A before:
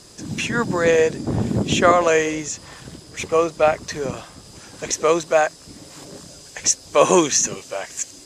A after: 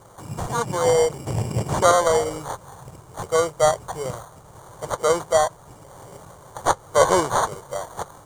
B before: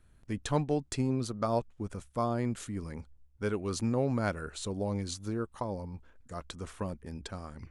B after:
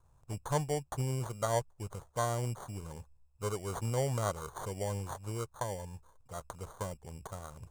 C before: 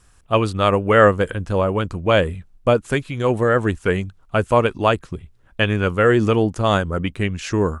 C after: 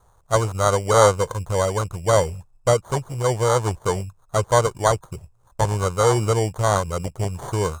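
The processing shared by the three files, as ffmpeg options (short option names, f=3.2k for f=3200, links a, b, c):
-filter_complex "[0:a]acrusher=samples=17:mix=1:aa=0.000001,acrossover=split=8500[a][b];[b]acompressor=threshold=-40dB:ratio=4:attack=1:release=60[c];[a][c]amix=inputs=2:normalize=0,equalizer=f=125:t=o:w=1:g=8,equalizer=f=250:t=o:w=1:g=-11,equalizer=f=500:t=o:w=1:g=5,equalizer=f=1k:t=o:w=1:g=8,equalizer=f=2k:t=o:w=1:g=-6,equalizer=f=4k:t=o:w=1:g=-5,equalizer=f=8k:t=o:w=1:g=11,volume=-5.5dB"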